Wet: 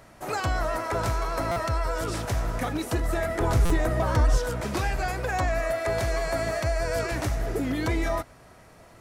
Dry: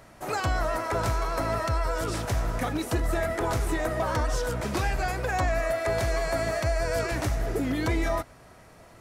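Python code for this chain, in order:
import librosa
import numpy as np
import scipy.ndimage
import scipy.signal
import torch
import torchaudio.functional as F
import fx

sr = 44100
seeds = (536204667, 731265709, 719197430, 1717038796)

y = fx.low_shelf(x, sr, hz=220.0, db=8.5, at=(3.35, 4.38))
y = fx.buffer_glitch(y, sr, at_s=(1.51, 3.65), block=256, repeats=8)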